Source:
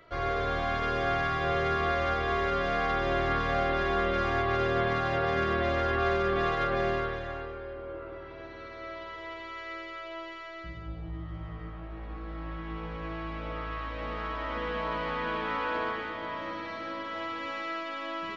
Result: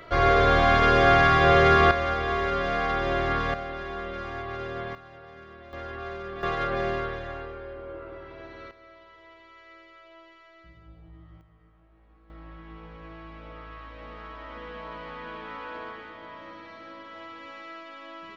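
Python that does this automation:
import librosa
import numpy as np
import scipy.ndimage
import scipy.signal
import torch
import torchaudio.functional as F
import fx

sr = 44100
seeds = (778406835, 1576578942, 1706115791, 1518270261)

y = fx.gain(x, sr, db=fx.steps((0.0, 10.5), (1.91, 2.0), (3.54, -7.0), (4.95, -19.0), (5.73, -9.5), (6.43, 0.5), (8.71, -11.0), (11.41, -19.0), (12.3, -7.0)))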